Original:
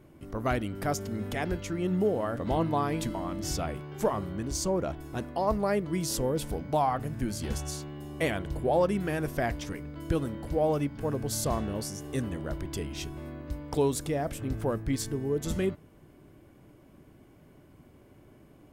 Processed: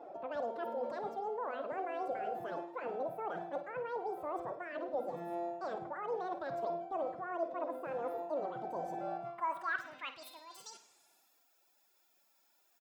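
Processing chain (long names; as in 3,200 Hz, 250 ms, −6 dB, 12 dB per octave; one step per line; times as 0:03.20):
reversed playback
downward compressor 12 to 1, threshold −40 dBFS, peak gain reduction 19.5 dB
reversed playback
band-pass filter sweep 260 Hz → 7,400 Hz, 0:13.20–0:16.75
phase-vocoder stretch with locked phases 1.6×
repeating echo 123 ms, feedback 48%, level −11.5 dB
wrong playback speed 33 rpm record played at 78 rpm
level +11 dB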